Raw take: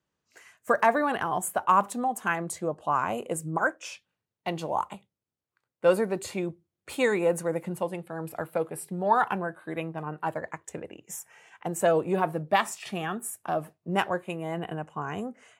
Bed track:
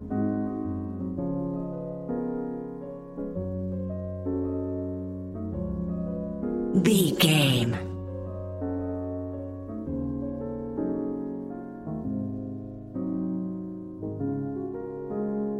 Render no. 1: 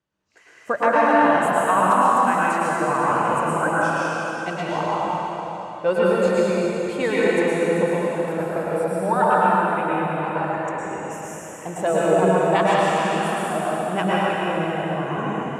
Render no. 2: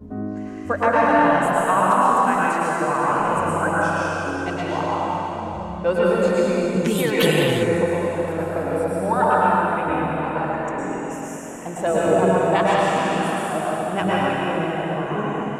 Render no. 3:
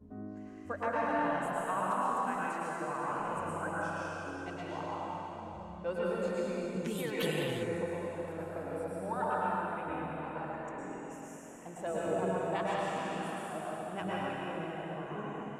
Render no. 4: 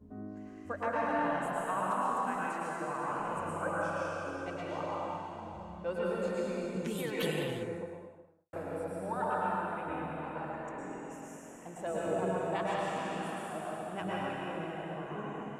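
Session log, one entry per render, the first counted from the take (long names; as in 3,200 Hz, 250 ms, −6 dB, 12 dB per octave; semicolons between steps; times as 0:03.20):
high-frequency loss of the air 58 metres; dense smooth reverb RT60 4 s, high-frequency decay 0.9×, pre-delay 95 ms, DRR −8 dB
mix in bed track −1.5 dB
level −15.5 dB
0:03.61–0:05.17: hollow resonant body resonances 550/1,200/2,300 Hz, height 10 dB; 0:07.21–0:08.53: fade out and dull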